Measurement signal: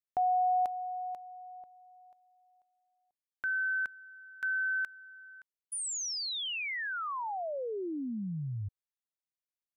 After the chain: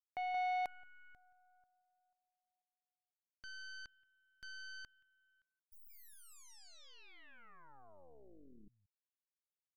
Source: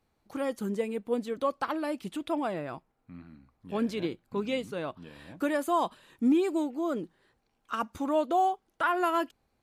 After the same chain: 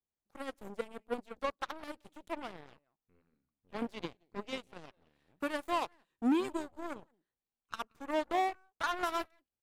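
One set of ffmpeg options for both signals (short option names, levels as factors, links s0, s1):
-af "aecho=1:1:176:0.141,asoftclip=type=tanh:threshold=0.0944,aeval=exprs='0.0891*(cos(1*acos(clip(val(0)/0.0891,-1,1)))-cos(1*PI/2))+0.002*(cos(2*acos(clip(val(0)/0.0891,-1,1)))-cos(2*PI/2))+0.0316*(cos(3*acos(clip(val(0)/0.0891,-1,1)))-cos(3*PI/2))+0.00178*(cos(8*acos(clip(val(0)/0.0891,-1,1)))-cos(8*PI/2))':c=same,volume=0.841"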